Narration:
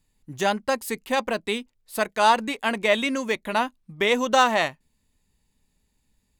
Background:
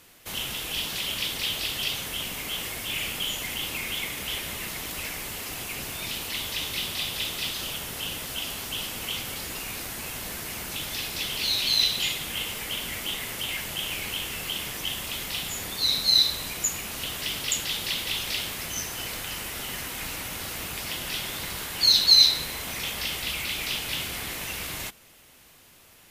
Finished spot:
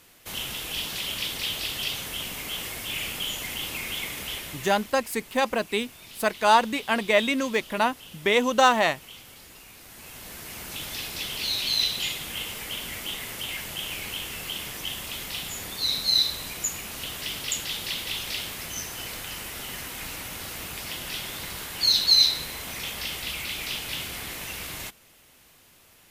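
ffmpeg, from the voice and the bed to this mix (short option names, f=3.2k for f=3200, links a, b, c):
-filter_complex "[0:a]adelay=4250,volume=0dB[a];[1:a]volume=10.5dB,afade=t=out:st=4.19:d=0.77:silence=0.237137,afade=t=in:st=9.8:d=1.04:silence=0.266073[b];[a][b]amix=inputs=2:normalize=0"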